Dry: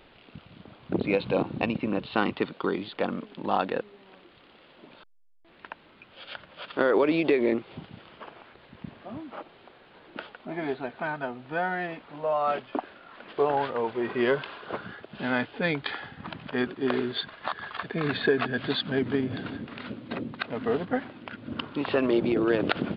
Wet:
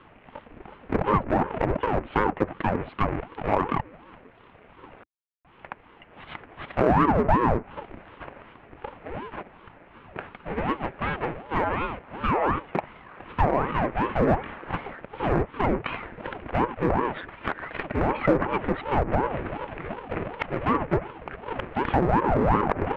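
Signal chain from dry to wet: half-waves squared off; elliptic band-pass 120–2300 Hz, stop band 40 dB; treble ducked by the level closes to 1200 Hz, closed at -18.5 dBFS; in parallel at -6.5 dB: hard clip -18 dBFS, distortion -12 dB; on the sum: ring modulator with a swept carrier 410 Hz, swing 80%, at 2.7 Hz

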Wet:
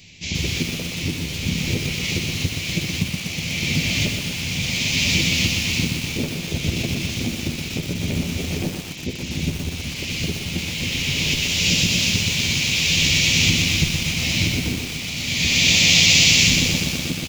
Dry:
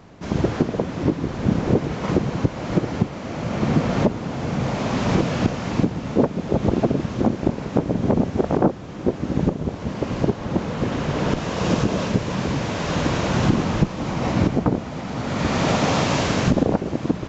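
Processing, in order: EQ curve 110 Hz 0 dB, 1400 Hz -22 dB, 2300 Hz +15 dB; on a send: early reflections 12 ms -7 dB, 71 ms -11 dB; on the sum: lo-fi delay 0.122 s, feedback 80%, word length 5-bit, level -5 dB; gain -1.5 dB

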